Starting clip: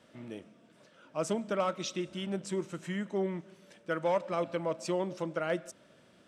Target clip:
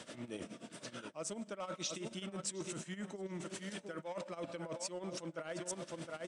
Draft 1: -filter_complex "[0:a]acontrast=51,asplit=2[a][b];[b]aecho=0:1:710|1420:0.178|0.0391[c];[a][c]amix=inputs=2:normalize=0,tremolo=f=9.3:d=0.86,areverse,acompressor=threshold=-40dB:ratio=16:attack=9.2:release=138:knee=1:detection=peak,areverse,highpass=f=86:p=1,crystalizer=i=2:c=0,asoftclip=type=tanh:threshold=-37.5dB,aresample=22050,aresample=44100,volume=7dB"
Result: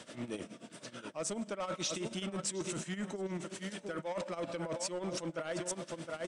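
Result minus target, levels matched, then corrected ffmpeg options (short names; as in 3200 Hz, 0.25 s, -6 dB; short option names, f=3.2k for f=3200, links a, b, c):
compressor: peak gain reduction -6.5 dB
-filter_complex "[0:a]acontrast=51,asplit=2[a][b];[b]aecho=0:1:710|1420:0.178|0.0391[c];[a][c]amix=inputs=2:normalize=0,tremolo=f=9.3:d=0.86,areverse,acompressor=threshold=-47dB:ratio=16:attack=9.2:release=138:knee=1:detection=peak,areverse,highpass=f=86:p=1,crystalizer=i=2:c=0,asoftclip=type=tanh:threshold=-37.5dB,aresample=22050,aresample=44100,volume=7dB"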